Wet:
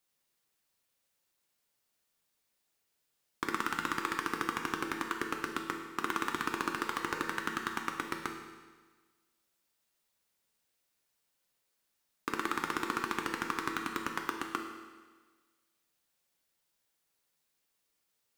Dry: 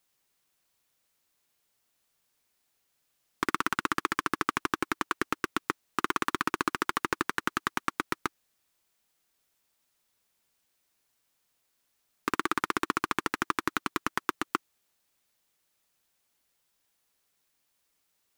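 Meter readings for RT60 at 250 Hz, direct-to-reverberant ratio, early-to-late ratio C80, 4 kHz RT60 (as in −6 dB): 1.4 s, 2.0 dB, 7.0 dB, 1.4 s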